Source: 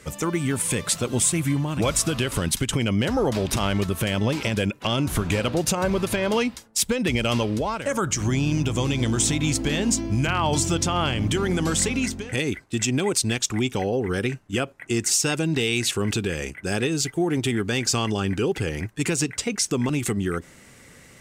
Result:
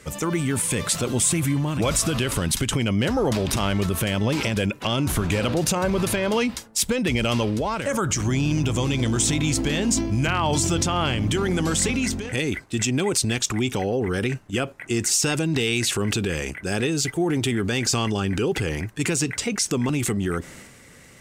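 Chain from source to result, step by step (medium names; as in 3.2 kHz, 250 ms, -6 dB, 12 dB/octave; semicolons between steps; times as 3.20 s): transient shaper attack 0 dB, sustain +7 dB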